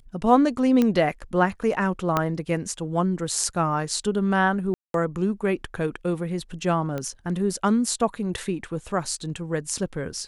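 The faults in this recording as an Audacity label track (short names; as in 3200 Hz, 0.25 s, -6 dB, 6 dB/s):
0.820000	0.820000	pop -10 dBFS
2.170000	2.170000	pop -8 dBFS
4.740000	4.940000	gap 0.202 s
6.980000	6.980000	pop -17 dBFS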